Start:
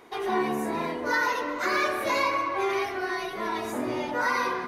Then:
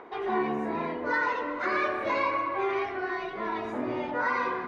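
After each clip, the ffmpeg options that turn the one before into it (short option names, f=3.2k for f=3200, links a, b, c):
-filter_complex "[0:a]lowpass=2.6k,acrossover=split=300|1600[a][b][c];[b]acompressor=mode=upward:threshold=-39dB:ratio=2.5[d];[a][d][c]amix=inputs=3:normalize=0,volume=-1.5dB"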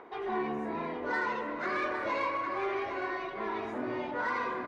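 -filter_complex "[0:a]asplit=2[a][b];[b]asoftclip=type=tanh:threshold=-26.5dB,volume=-3.5dB[c];[a][c]amix=inputs=2:normalize=0,aecho=1:1:811:0.376,volume=-8dB"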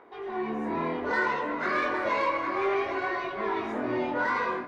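-af "flanger=delay=19.5:depth=4.6:speed=0.61,dynaudnorm=f=350:g=3:m=8dB"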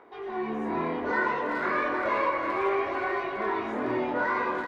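-filter_complex "[0:a]asplit=2[a][b];[b]adelay=380,highpass=300,lowpass=3.4k,asoftclip=type=hard:threshold=-23.5dB,volume=-6dB[c];[a][c]amix=inputs=2:normalize=0,acrossover=split=2700[d][e];[e]acompressor=threshold=-50dB:ratio=4:attack=1:release=60[f];[d][f]amix=inputs=2:normalize=0"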